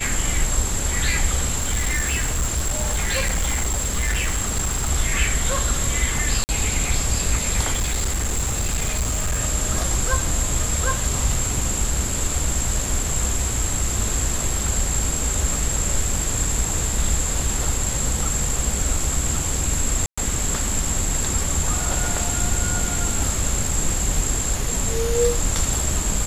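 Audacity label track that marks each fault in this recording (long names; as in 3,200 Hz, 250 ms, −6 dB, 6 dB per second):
1.570000	4.910000	clipping −17.5 dBFS
6.440000	6.490000	drop-out 49 ms
7.730000	9.400000	clipping −18 dBFS
20.060000	20.180000	drop-out 115 ms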